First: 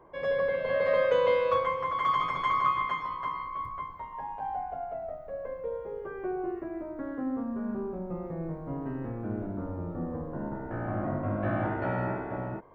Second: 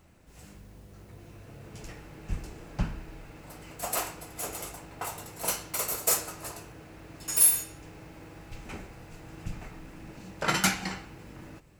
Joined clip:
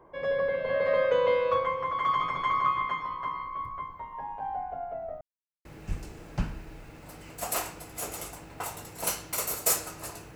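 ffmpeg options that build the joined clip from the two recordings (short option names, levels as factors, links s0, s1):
-filter_complex "[0:a]apad=whole_dur=10.35,atrim=end=10.35,asplit=2[s0][s1];[s0]atrim=end=5.21,asetpts=PTS-STARTPTS,afade=t=out:st=5.206:d=0.004:c=hsin[s2];[s1]atrim=start=5.21:end=5.65,asetpts=PTS-STARTPTS,volume=0[s3];[1:a]atrim=start=2.06:end=6.76,asetpts=PTS-STARTPTS,afade=t=in:d=0.004:c=hsin[s4];[s2][s3][s4]concat=n=3:v=0:a=1"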